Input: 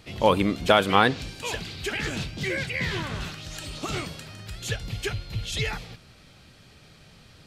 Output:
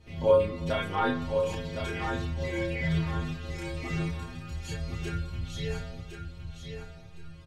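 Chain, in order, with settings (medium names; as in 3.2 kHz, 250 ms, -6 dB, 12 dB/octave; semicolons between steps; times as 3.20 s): tilt EQ -2.5 dB/octave; in parallel at +1 dB: compression, threshold -27 dBFS, peak gain reduction 14.5 dB; on the sum: inharmonic resonator 80 Hz, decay 0.79 s, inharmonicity 0.008; chorus voices 4, 0.38 Hz, delay 30 ms, depth 1.5 ms; on a send: feedback delay 1062 ms, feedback 26%, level -7 dB; on the sum: Schroeder reverb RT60 2.9 s, combs from 31 ms, DRR 16 dB; trim +5 dB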